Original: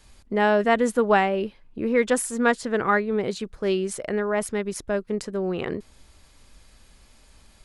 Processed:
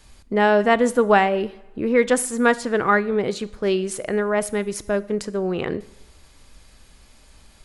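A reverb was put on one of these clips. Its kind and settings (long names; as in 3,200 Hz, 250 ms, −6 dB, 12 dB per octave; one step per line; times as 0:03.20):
coupled-rooms reverb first 0.7 s, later 2 s, from −18 dB, DRR 15.5 dB
level +3 dB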